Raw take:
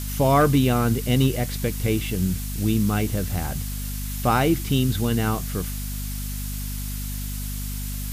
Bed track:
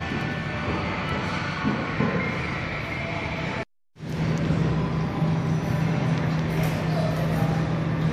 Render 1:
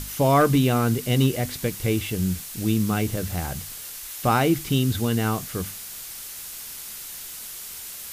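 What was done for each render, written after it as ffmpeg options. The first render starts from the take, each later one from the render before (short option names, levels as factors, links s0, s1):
-af "bandreject=f=50:t=h:w=6,bandreject=f=100:t=h:w=6,bandreject=f=150:t=h:w=6,bandreject=f=200:t=h:w=6,bandreject=f=250:t=h:w=6"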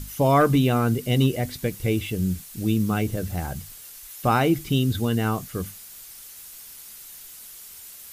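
-af "afftdn=nr=8:nf=-37"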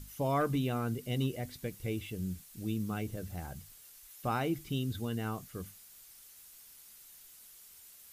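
-af "volume=0.237"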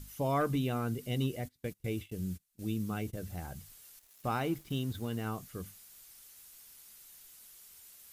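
-filter_complex "[0:a]asplit=3[s0][s1][s2];[s0]afade=t=out:st=1.46:d=0.02[s3];[s1]agate=range=0.0562:threshold=0.00631:ratio=16:release=100:detection=peak,afade=t=in:st=1.46:d=0.02,afade=t=out:st=3.15:d=0.02[s4];[s2]afade=t=in:st=3.15:d=0.02[s5];[s3][s4][s5]amix=inputs=3:normalize=0,asettb=1/sr,asplit=3[s6][s7][s8];[s6]atrim=end=3.994[s9];[s7]atrim=start=3.99:end=5.27,asetpts=PTS-STARTPTS,afade=t=in:d=0.004:c=qsin,afade=t=out:st=1.276:d=0.004:c=qsin,aeval=exprs='sgn(val(0))*max(abs(val(0))-0.002,0)':c=same[s10];[s8]atrim=start=5.266[s11];[s9][s10]acrossfade=d=0.004:c1=hsin:c2=qsin[s12];[s12][s11]acrossfade=d=0.004:c1=qsin:c2=hsin"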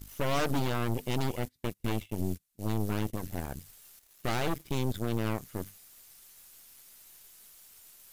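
-af "aeval=exprs='0.0944*(cos(1*acos(clip(val(0)/0.0944,-1,1)))-cos(1*PI/2))+0.0266*(cos(8*acos(clip(val(0)/0.0944,-1,1)))-cos(8*PI/2))':c=same"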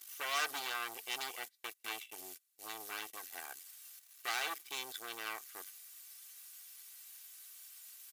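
-af "highpass=1300,aecho=1:1:2.6:0.46"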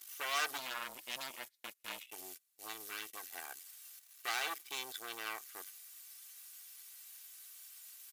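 -filter_complex "[0:a]asplit=3[s0][s1][s2];[s0]afade=t=out:st=0.57:d=0.02[s3];[s1]aeval=exprs='val(0)*sin(2*PI*130*n/s)':c=same,afade=t=in:st=0.57:d=0.02,afade=t=out:st=2.06:d=0.02[s4];[s2]afade=t=in:st=2.06:d=0.02[s5];[s3][s4][s5]amix=inputs=3:normalize=0,asettb=1/sr,asplit=3[s6][s7][s8];[s6]atrim=end=2.734[s9];[s7]atrim=start=2.73:end=3.15,asetpts=PTS-STARTPTS,afade=t=in:d=0.004:c=qsin,afade=t=out:st=0.416:d=0.004:c=qsin,equalizer=f=780:w=1.9:g=-10.5[s10];[s8]atrim=start=3.146[s11];[s9][s10]acrossfade=d=0.004:c1=hsin:c2=qsin[s12];[s12][s11]acrossfade=d=0.004:c1=qsin:c2=hsin"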